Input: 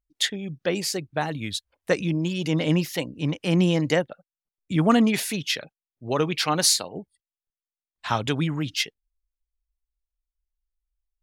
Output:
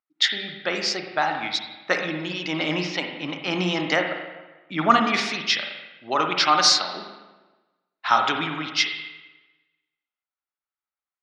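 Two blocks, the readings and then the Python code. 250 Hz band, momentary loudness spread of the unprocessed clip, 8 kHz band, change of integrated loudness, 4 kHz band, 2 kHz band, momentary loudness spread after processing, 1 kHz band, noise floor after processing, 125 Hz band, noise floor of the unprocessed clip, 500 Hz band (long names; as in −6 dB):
−5.0 dB, 11 LU, −3.0 dB, +1.5 dB, +5.0 dB, +6.5 dB, 15 LU, +8.0 dB, below −85 dBFS, −9.5 dB, below −85 dBFS, −2.0 dB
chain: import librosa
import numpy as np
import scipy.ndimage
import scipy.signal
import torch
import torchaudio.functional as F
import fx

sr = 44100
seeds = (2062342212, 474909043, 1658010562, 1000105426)

y = fx.cabinet(x, sr, low_hz=360.0, low_slope=12, high_hz=5600.0, hz=(470.0, 800.0, 1300.0, 2100.0, 3800.0, 5400.0), db=(-9, 4, 9, 4, 3, 7))
y = fx.rev_spring(y, sr, rt60_s=1.2, pass_ms=(39, 44, 56), chirp_ms=50, drr_db=3.5)
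y = fx.env_lowpass(y, sr, base_hz=2300.0, full_db=-20.5)
y = y * librosa.db_to_amplitude(1.5)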